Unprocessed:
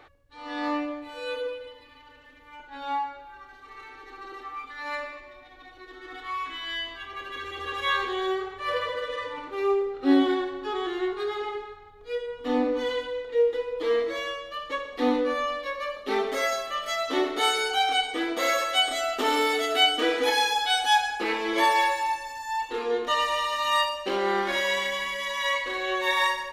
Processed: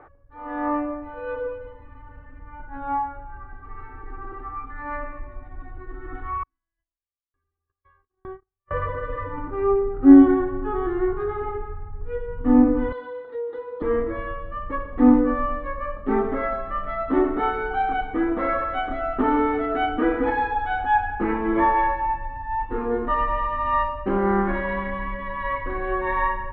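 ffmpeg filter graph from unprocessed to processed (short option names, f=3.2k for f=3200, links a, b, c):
-filter_complex "[0:a]asettb=1/sr,asplit=3[a][b][c];[a]atrim=end=6.434[d];[b]atrim=start=6.43:end=8.71,asetpts=PTS-STARTPTS,afade=t=in:d=0.004:c=qsin,afade=t=out:st=2.276:d=0.004:c=qsin,agate=range=-46dB:threshold=-27dB:ratio=16:release=100:detection=peak,acompressor=threshold=-37dB:ratio=3:attack=3.2:release=140:knee=1:detection=peak,aeval=exprs='val(0)*pow(10,-40*if(lt(mod(1.1*n/s,1),2*abs(1.1)/1000),1-mod(1.1*n/s,1)/(2*abs(1.1)/1000),(mod(1.1*n/s,1)-2*abs(1.1)/1000)/(1-2*abs(1.1)/1000))/20)':c=same[e];[c]atrim=start=8.706[f];[d][e]acrossfade=d=0.004:c1=hsin:c2=qsin[g];[g][f]acrossfade=d=0.004:c1=qsin:c2=hsin,asettb=1/sr,asplit=3[h][i][j];[h]atrim=end=12.924[k];[i]atrim=start=12.92:end=13.82,asetpts=PTS-STARTPTS,afade=t=in:d=0.004:c=qsin,afade=t=out:st=0.896:d=0.004:c=qsin,highpass=470,highshelf=f=3.2k:t=q:w=3:g=7.5,acompressor=threshold=-28dB:ratio=4:attack=3.2:release=140:knee=1:detection=peak[l];[j]atrim=start=13.816[m];[k][l]acrossfade=d=0.004:c1=hsin:c2=qsin[n];[n][m]acrossfade=d=0.004:c1=qsin:c2=hsin,lowpass=f=1.5k:w=0.5412,lowpass=f=1.5k:w=1.3066,asubboost=boost=11:cutoff=150,volume=5.5dB"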